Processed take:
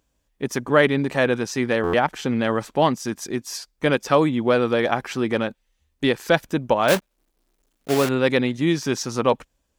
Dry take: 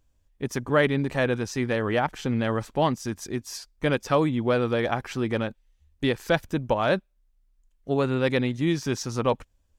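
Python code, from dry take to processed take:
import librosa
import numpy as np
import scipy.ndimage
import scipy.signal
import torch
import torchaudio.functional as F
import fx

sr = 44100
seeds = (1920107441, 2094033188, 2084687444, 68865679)

y = fx.block_float(x, sr, bits=3, at=(6.88, 8.1))
y = scipy.signal.sosfilt(scipy.signal.butter(2, 54.0, 'highpass', fs=sr, output='sos'), y)
y = fx.peak_eq(y, sr, hz=83.0, db=-13.5, octaves=0.98)
y = fx.buffer_glitch(y, sr, at_s=(1.83,), block=512, repeats=8)
y = y * 10.0 ** (5.0 / 20.0)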